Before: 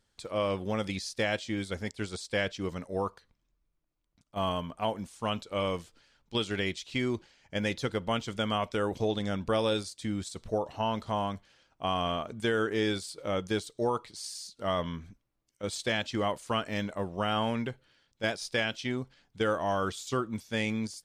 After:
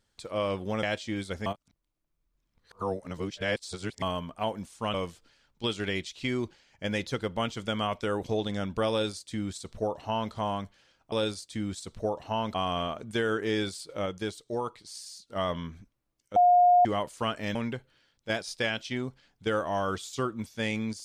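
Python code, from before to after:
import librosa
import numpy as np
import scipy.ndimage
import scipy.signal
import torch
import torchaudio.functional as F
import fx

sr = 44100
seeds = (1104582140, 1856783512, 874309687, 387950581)

y = fx.edit(x, sr, fx.cut(start_s=0.83, length_s=0.41),
    fx.reverse_span(start_s=1.87, length_s=2.56),
    fx.cut(start_s=5.35, length_s=0.3),
    fx.duplicate(start_s=9.61, length_s=1.42, to_s=11.83),
    fx.clip_gain(start_s=13.35, length_s=1.3, db=-3.0),
    fx.bleep(start_s=15.65, length_s=0.49, hz=713.0, db=-16.0),
    fx.cut(start_s=16.84, length_s=0.65), tone=tone)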